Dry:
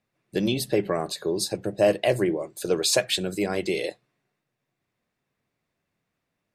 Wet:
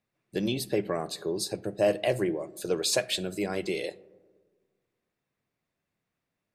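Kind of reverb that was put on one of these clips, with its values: digital reverb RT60 1.5 s, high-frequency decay 0.25×, pre-delay 5 ms, DRR 20 dB; gain -4.5 dB

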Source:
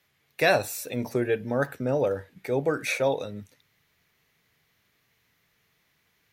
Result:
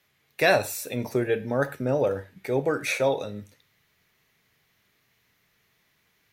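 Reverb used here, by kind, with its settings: non-linear reverb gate 0.14 s falling, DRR 11 dB; gain +1 dB

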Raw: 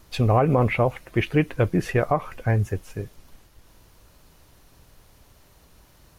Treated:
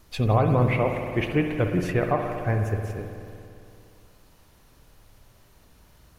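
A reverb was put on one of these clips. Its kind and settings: spring tank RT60 2.6 s, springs 56 ms, chirp 35 ms, DRR 4 dB; gain -3 dB

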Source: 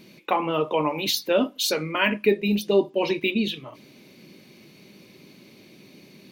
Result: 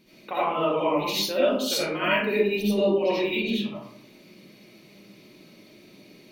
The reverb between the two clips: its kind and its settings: digital reverb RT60 0.68 s, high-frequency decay 0.5×, pre-delay 40 ms, DRR -10 dB; gain -10.5 dB

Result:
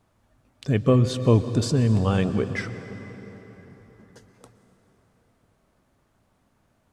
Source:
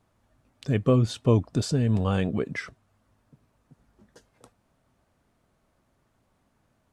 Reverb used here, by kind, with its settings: plate-style reverb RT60 4.4 s, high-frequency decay 0.7×, pre-delay 0.105 s, DRR 11 dB; gain +2.5 dB

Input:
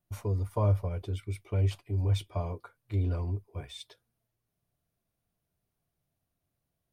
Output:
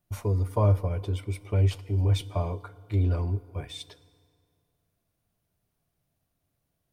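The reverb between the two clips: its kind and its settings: FDN reverb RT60 2.3 s, low-frequency decay 0.95×, high-frequency decay 0.7×, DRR 17 dB; gain +4.5 dB

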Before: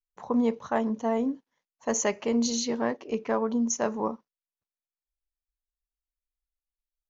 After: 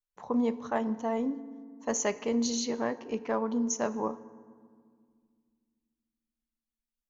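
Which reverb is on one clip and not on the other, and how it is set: FDN reverb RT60 1.9 s, low-frequency decay 1.6×, high-frequency decay 0.5×, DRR 15 dB; gain -3 dB

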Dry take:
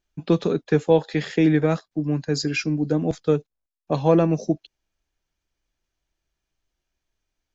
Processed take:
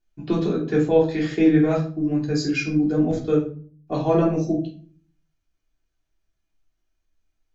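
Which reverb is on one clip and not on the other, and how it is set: shoebox room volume 340 m³, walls furnished, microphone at 3.3 m; gain -7 dB

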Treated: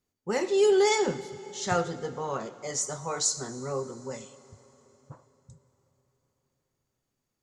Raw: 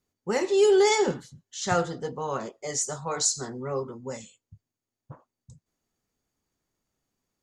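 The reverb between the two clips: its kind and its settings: plate-style reverb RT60 4.1 s, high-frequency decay 0.85×, DRR 14.5 dB; gain -2 dB

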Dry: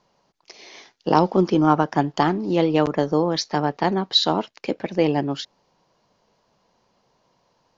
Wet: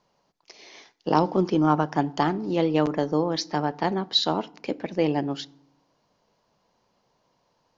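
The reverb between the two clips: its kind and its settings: FDN reverb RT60 0.66 s, low-frequency decay 1.55×, high-frequency decay 0.6×, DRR 18.5 dB; gain -4 dB

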